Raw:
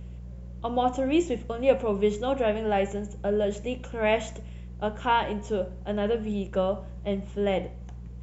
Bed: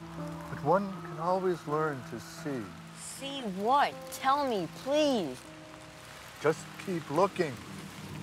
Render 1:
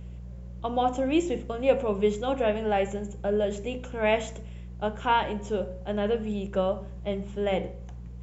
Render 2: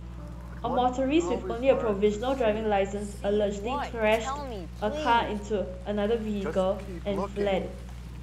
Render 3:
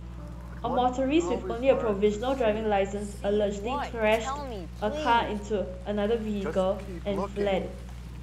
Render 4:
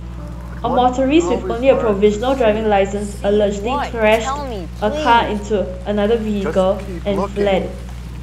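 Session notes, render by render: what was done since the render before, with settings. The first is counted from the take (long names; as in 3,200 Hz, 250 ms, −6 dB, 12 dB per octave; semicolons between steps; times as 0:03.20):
hum removal 50 Hz, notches 11
mix in bed −7 dB
no processing that can be heard
level +11 dB; brickwall limiter −1 dBFS, peak gain reduction 2 dB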